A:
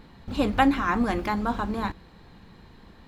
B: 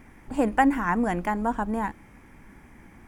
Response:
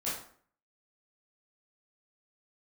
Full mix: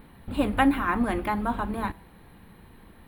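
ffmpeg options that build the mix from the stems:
-filter_complex "[0:a]lowpass=f=3500:w=0.5412,lowpass=f=3500:w=1.3066,volume=0.891[s0];[1:a]aexciter=amount=8.7:drive=5.5:freq=9200,volume=0.178,asplit=2[s1][s2];[s2]volume=0.316[s3];[2:a]atrim=start_sample=2205[s4];[s3][s4]afir=irnorm=-1:irlink=0[s5];[s0][s1][s5]amix=inputs=3:normalize=0"

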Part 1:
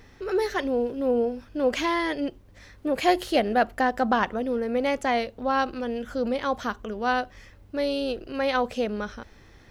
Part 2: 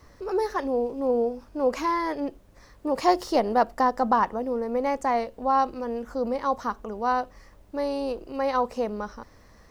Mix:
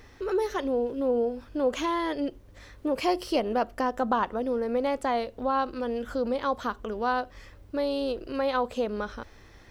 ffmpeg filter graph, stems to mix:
-filter_complex "[0:a]equalizer=f=190:w=2.1:g=-7.5,acompressor=threshold=0.0251:ratio=2,volume=1[s0];[1:a]volume=0.422[s1];[s0][s1]amix=inputs=2:normalize=0"

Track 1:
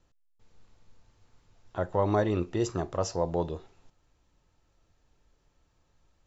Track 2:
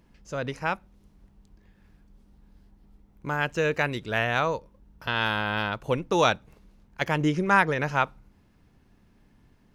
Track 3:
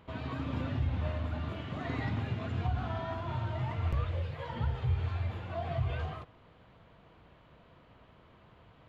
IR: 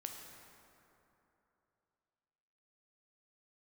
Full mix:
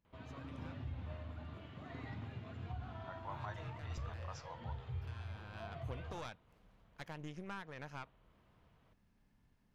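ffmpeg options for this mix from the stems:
-filter_complex "[0:a]highpass=f=870:w=0.5412,highpass=f=870:w=1.3066,equalizer=f=7500:w=1.5:g=-11.5,adelay=1300,volume=0.237[s0];[1:a]equalizer=f=350:t=o:w=0.77:g=-5.5,acompressor=threshold=0.0158:ratio=3,aeval=exprs='(tanh(31.6*val(0)+0.8)-tanh(0.8))/31.6':c=same,volume=0.422,afade=t=in:st=5.28:d=0.58:silence=0.316228[s1];[2:a]adelay=50,volume=0.237[s2];[s0][s1][s2]amix=inputs=3:normalize=0"

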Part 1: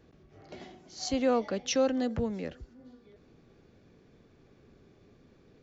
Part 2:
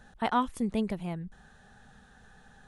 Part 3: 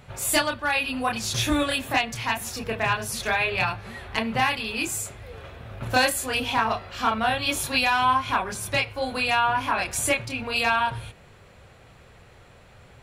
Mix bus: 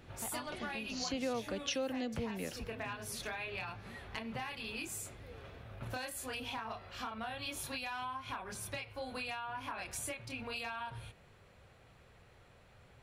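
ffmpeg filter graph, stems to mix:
-filter_complex "[0:a]equalizer=f=2800:t=o:w=1.1:g=7,volume=1[s0];[1:a]volume=0.168[s1];[2:a]equalizer=f=7300:t=o:w=0.21:g=-3,acompressor=threshold=0.0501:ratio=6,volume=0.299[s2];[s0][s1][s2]amix=inputs=3:normalize=0,acompressor=threshold=0.0141:ratio=3"

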